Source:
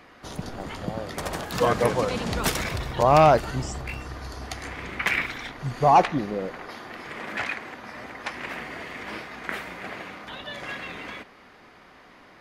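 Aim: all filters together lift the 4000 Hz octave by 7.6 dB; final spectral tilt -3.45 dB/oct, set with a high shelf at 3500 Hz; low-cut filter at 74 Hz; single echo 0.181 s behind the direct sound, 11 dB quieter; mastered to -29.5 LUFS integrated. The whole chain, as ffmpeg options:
-af "highpass=74,highshelf=f=3.5k:g=7,equalizer=f=4k:t=o:g=5,aecho=1:1:181:0.282,volume=-5dB"

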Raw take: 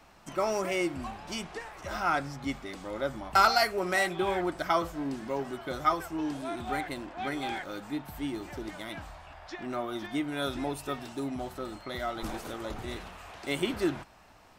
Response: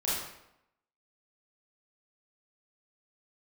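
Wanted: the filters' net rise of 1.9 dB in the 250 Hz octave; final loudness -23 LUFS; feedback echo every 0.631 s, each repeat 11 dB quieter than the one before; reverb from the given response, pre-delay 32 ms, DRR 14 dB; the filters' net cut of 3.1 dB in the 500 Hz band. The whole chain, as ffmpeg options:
-filter_complex "[0:a]equalizer=f=250:t=o:g=5,equalizer=f=500:t=o:g=-6.5,aecho=1:1:631|1262|1893:0.282|0.0789|0.0221,asplit=2[a][b];[1:a]atrim=start_sample=2205,adelay=32[c];[b][c]afir=irnorm=-1:irlink=0,volume=-21.5dB[d];[a][d]amix=inputs=2:normalize=0,volume=9dB"

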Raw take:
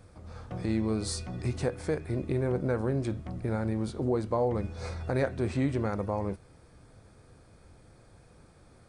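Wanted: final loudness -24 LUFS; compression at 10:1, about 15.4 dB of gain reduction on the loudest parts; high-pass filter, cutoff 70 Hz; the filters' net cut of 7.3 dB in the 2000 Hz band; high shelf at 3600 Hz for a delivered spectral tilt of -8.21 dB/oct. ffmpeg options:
-af "highpass=70,equalizer=f=2k:t=o:g=-8,highshelf=f=3.6k:g=-7.5,acompressor=threshold=-40dB:ratio=10,volume=21.5dB"

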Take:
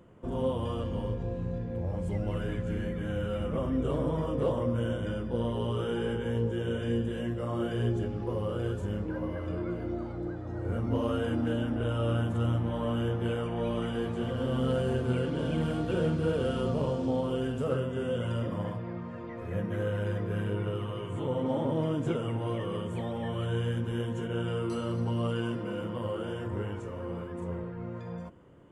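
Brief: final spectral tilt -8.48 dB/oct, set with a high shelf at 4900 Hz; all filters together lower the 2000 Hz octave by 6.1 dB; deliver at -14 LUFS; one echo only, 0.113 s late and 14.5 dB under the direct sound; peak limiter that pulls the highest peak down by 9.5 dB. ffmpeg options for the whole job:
-af "equalizer=f=2k:t=o:g=-8.5,highshelf=f=4.9k:g=-6,alimiter=level_in=3dB:limit=-24dB:level=0:latency=1,volume=-3dB,aecho=1:1:113:0.188,volume=21.5dB"

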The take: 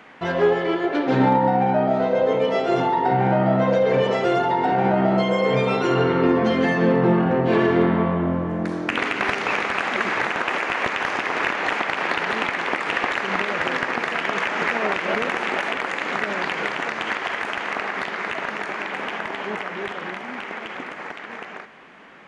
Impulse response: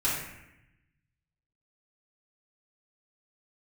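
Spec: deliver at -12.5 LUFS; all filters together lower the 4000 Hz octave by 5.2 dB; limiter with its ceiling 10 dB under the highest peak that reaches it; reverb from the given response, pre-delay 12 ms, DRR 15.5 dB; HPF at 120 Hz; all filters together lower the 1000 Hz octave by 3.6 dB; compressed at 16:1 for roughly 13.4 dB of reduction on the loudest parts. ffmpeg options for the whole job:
-filter_complex "[0:a]highpass=120,equalizer=f=1k:t=o:g=-4.5,equalizer=f=4k:t=o:g=-7.5,acompressor=threshold=-28dB:ratio=16,alimiter=level_in=2.5dB:limit=-24dB:level=0:latency=1,volume=-2.5dB,asplit=2[a][b];[1:a]atrim=start_sample=2205,adelay=12[c];[b][c]afir=irnorm=-1:irlink=0,volume=-25.5dB[d];[a][d]amix=inputs=2:normalize=0,volume=23dB"

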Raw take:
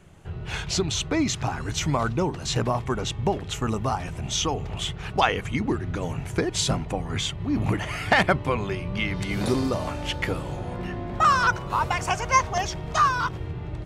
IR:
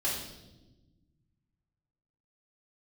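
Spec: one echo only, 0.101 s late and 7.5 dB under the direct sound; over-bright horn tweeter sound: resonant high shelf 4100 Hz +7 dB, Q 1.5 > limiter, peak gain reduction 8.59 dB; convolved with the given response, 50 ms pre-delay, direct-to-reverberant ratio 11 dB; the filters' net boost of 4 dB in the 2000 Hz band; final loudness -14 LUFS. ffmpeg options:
-filter_complex "[0:a]equalizer=f=2k:t=o:g=6.5,aecho=1:1:101:0.422,asplit=2[a][b];[1:a]atrim=start_sample=2205,adelay=50[c];[b][c]afir=irnorm=-1:irlink=0,volume=-17.5dB[d];[a][d]amix=inputs=2:normalize=0,highshelf=f=4.1k:t=q:w=1.5:g=7,volume=9.5dB,alimiter=limit=-2dB:level=0:latency=1"

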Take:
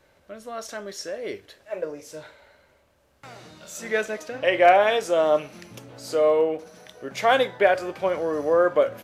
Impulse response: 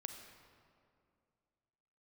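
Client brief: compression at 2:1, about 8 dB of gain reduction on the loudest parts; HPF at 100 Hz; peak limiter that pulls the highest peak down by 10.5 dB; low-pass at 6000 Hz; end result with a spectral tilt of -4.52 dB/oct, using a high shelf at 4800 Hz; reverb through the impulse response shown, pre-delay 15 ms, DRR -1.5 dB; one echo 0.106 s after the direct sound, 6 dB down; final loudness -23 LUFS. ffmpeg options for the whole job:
-filter_complex "[0:a]highpass=100,lowpass=6k,highshelf=f=4.8k:g=-7.5,acompressor=threshold=-27dB:ratio=2,alimiter=limit=-23.5dB:level=0:latency=1,aecho=1:1:106:0.501,asplit=2[a][b];[1:a]atrim=start_sample=2205,adelay=15[c];[b][c]afir=irnorm=-1:irlink=0,volume=4.5dB[d];[a][d]amix=inputs=2:normalize=0,volume=6dB"

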